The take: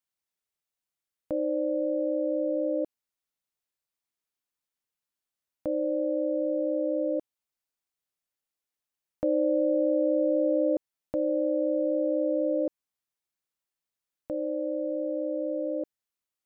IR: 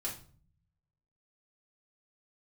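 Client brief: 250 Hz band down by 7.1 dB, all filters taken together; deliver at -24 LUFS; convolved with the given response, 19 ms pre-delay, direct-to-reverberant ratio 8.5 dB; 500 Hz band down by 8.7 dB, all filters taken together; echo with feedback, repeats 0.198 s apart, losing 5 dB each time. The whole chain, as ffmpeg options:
-filter_complex "[0:a]equalizer=f=250:t=o:g=-5.5,equalizer=f=500:t=o:g=-9,aecho=1:1:198|396|594|792|990|1188|1386:0.562|0.315|0.176|0.0988|0.0553|0.031|0.0173,asplit=2[a][b];[1:a]atrim=start_sample=2205,adelay=19[c];[b][c]afir=irnorm=-1:irlink=0,volume=-9.5dB[d];[a][d]amix=inputs=2:normalize=0,volume=13.5dB"

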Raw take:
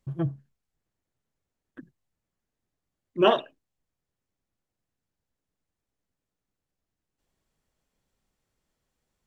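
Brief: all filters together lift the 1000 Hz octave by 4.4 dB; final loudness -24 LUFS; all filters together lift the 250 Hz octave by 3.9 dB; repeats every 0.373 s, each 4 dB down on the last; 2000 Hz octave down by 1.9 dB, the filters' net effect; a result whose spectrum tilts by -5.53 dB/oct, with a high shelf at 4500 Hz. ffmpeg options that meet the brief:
-af "equalizer=f=250:t=o:g=6.5,equalizer=f=1k:t=o:g=6.5,equalizer=f=2k:t=o:g=-4.5,highshelf=f=4.5k:g=-4,aecho=1:1:373|746|1119|1492|1865|2238|2611|2984|3357:0.631|0.398|0.25|0.158|0.0994|0.0626|0.0394|0.0249|0.0157,volume=2dB"

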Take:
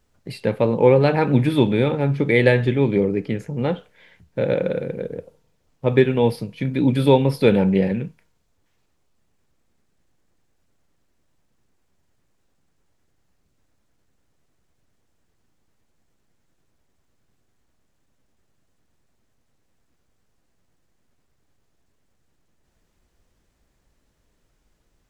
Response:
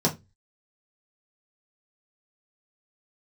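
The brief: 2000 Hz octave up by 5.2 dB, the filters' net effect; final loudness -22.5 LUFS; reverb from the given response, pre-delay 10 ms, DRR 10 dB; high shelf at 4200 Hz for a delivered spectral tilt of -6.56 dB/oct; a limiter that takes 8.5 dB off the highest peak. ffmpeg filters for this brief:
-filter_complex "[0:a]equalizer=f=2k:t=o:g=4.5,highshelf=f=4.2k:g=7.5,alimiter=limit=-7.5dB:level=0:latency=1,asplit=2[a][b];[1:a]atrim=start_sample=2205,adelay=10[c];[b][c]afir=irnorm=-1:irlink=0,volume=-22dB[d];[a][d]amix=inputs=2:normalize=0,volume=-4dB"

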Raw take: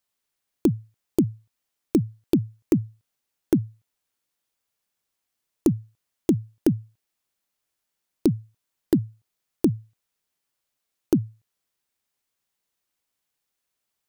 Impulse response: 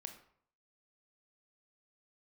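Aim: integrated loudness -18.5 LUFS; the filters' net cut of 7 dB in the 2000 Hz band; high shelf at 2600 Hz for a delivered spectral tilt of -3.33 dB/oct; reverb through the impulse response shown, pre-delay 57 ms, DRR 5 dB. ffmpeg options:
-filter_complex "[0:a]equalizer=f=2k:t=o:g=-7.5,highshelf=f=2.6k:g=-4.5,asplit=2[a][b];[1:a]atrim=start_sample=2205,adelay=57[c];[b][c]afir=irnorm=-1:irlink=0,volume=-0.5dB[d];[a][d]amix=inputs=2:normalize=0,volume=7dB"

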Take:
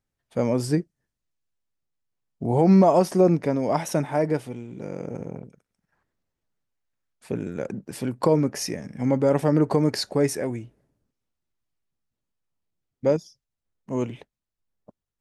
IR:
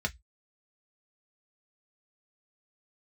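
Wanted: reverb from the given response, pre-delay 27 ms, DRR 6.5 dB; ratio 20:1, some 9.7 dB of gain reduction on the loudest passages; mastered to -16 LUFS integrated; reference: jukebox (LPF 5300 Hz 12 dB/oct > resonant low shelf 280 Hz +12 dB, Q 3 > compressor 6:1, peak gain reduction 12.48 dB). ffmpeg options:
-filter_complex "[0:a]acompressor=threshold=-21dB:ratio=20,asplit=2[a][b];[1:a]atrim=start_sample=2205,adelay=27[c];[b][c]afir=irnorm=-1:irlink=0,volume=-12dB[d];[a][d]amix=inputs=2:normalize=0,lowpass=5.3k,lowshelf=f=280:t=q:w=3:g=12,acompressor=threshold=-16dB:ratio=6,volume=6dB"

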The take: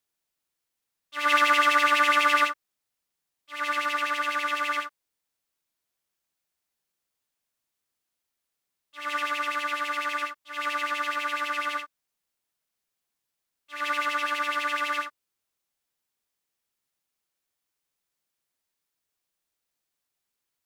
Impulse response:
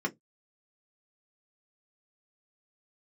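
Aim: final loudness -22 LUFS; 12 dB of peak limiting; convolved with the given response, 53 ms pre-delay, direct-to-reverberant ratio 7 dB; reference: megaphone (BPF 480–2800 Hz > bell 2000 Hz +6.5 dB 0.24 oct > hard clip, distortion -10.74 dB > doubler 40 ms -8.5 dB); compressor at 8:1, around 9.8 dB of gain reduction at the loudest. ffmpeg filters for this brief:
-filter_complex "[0:a]acompressor=threshold=-27dB:ratio=8,alimiter=level_in=6.5dB:limit=-24dB:level=0:latency=1,volume=-6.5dB,asplit=2[a][b];[1:a]atrim=start_sample=2205,adelay=53[c];[b][c]afir=irnorm=-1:irlink=0,volume=-13.5dB[d];[a][d]amix=inputs=2:normalize=0,highpass=480,lowpass=2.8k,equalizer=f=2k:t=o:w=0.24:g=6.5,asoftclip=type=hard:threshold=-36.5dB,asplit=2[e][f];[f]adelay=40,volume=-8.5dB[g];[e][g]amix=inputs=2:normalize=0,volume=16dB"

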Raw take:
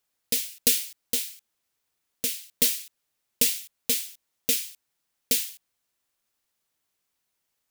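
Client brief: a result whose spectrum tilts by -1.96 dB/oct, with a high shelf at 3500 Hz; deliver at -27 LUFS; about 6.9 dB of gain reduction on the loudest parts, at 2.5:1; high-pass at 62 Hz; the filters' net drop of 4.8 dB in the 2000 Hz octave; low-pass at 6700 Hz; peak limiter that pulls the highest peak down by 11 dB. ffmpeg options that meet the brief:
-af "highpass=62,lowpass=6.7k,equalizer=f=2k:t=o:g=-4,highshelf=f=3.5k:g=-5.5,acompressor=threshold=-39dB:ratio=2.5,volume=19dB,alimiter=limit=-10dB:level=0:latency=1"

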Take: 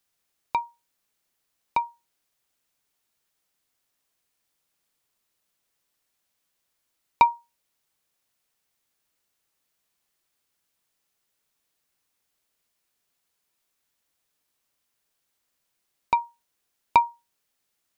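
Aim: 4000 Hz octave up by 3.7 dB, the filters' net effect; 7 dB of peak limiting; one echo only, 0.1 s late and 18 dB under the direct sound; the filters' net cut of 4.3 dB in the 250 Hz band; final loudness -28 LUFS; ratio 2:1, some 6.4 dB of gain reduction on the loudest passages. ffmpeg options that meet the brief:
-af "equalizer=f=250:t=o:g=-6,equalizer=f=4k:t=o:g=4,acompressor=threshold=-24dB:ratio=2,alimiter=limit=-13dB:level=0:latency=1,aecho=1:1:100:0.126,volume=6.5dB"

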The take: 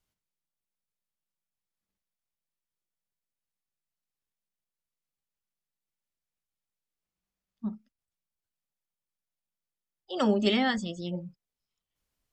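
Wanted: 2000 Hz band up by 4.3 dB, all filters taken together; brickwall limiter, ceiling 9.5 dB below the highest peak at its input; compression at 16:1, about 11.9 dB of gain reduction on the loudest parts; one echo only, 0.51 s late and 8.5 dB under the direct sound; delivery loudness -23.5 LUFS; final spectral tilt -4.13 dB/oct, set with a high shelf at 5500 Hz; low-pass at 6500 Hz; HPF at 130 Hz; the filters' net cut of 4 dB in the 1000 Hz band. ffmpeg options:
-af "highpass=130,lowpass=6.5k,equalizer=f=1k:t=o:g=-7.5,equalizer=f=2k:t=o:g=6,highshelf=f=5.5k:g=7.5,acompressor=threshold=-32dB:ratio=16,alimiter=level_in=7dB:limit=-24dB:level=0:latency=1,volume=-7dB,aecho=1:1:510:0.376,volume=19dB"

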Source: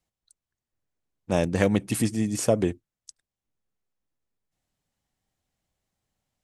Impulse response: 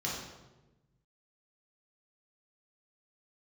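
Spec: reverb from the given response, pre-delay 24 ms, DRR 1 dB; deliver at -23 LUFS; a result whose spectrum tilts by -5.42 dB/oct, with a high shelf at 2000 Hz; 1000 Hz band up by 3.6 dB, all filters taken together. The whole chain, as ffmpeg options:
-filter_complex "[0:a]equalizer=f=1k:t=o:g=4.5,highshelf=f=2k:g=4,asplit=2[a][b];[1:a]atrim=start_sample=2205,adelay=24[c];[b][c]afir=irnorm=-1:irlink=0,volume=-6dB[d];[a][d]amix=inputs=2:normalize=0,volume=-2dB"

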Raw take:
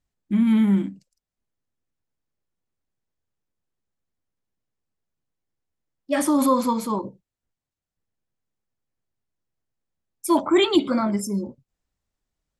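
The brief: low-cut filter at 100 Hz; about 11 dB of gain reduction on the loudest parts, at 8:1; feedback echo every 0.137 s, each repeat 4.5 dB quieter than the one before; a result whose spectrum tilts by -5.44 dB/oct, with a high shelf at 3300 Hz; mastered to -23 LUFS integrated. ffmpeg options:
-af "highpass=100,highshelf=f=3.3k:g=-4,acompressor=threshold=-24dB:ratio=8,aecho=1:1:137|274|411|548|685|822|959|1096|1233:0.596|0.357|0.214|0.129|0.0772|0.0463|0.0278|0.0167|0.01,volume=5dB"

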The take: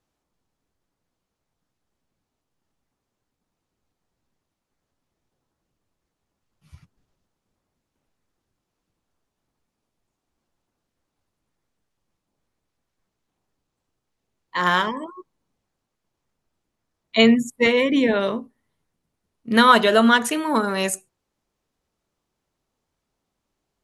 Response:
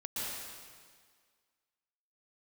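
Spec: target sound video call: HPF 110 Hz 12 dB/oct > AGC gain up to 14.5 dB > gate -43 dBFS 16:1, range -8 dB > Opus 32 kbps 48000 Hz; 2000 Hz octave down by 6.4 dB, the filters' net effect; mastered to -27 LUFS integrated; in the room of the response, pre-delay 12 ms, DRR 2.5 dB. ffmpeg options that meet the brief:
-filter_complex "[0:a]equalizer=f=2k:t=o:g=-9,asplit=2[a][b];[1:a]atrim=start_sample=2205,adelay=12[c];[b][c]afir=irnorm=-1:irlink=0,volume=-6dB[d];[a][d]amix=inputs=2:normalize=0,highpass=110,dynaudnorm=m=14.5dB,agate=range=-8dB:threshold=-43dB:ratio=16,volume=-8dB" -ar 48000 -c:a libopus -b:a 32k

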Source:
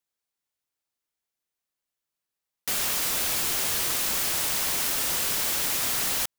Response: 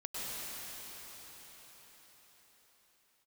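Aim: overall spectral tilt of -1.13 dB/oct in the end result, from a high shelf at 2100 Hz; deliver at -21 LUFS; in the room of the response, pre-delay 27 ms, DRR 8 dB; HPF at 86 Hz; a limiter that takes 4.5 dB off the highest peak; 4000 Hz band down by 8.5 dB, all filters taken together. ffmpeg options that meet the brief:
-filter_complex "[0:a]highpass=86,highshelf=f=2.1k:g=-6.5,equalizer=f=4k:t=o:g=-4.5,alimiter=limit=-24dB:level=0:latency=1,asplit=2[a][b];[1:a]atrim=start_sample=2205,adelay=27[c];[b][c]afir=irnorm=-1:irlink=0,volume=-12dB[d];[a][d]amix=inputs=2:normalize=0,volume=10.5dB"

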